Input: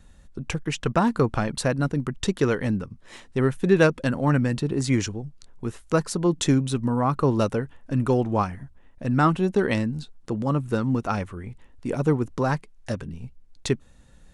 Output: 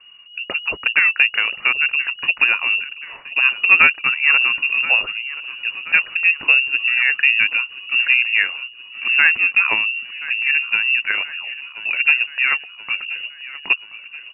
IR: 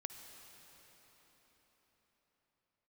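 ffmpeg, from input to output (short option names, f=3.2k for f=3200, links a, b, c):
-filter_complex "[0:a]aeval=exprs='0.596*(cos(1*acos(clip(val(0)/0.596,-1,1)))-cos(1*PI/2))+0.0841*(cos(3*acos(clip(val(0)/0.596,-1,1)))-cos(3*PI/2))':c=same,lowpass=f=2.5k:t=q:w=0.5098,lowpass=f=2.5k:t=q:w=0.6013,lowpass=f=2.5k:t=q:w=0.9,lowpass=f=2.5k:t=q:w=2.563,afreqshift=-2900,asplit=2[a][b];[b]aecho=0:1:1028|2056|3084|4112|5140:0.141|0.0777|0.0427|0.0235|0.0129[c];[a][c]amix=inputs=2:normalize=0,apsyclip=11.5dB,volume=-2dB"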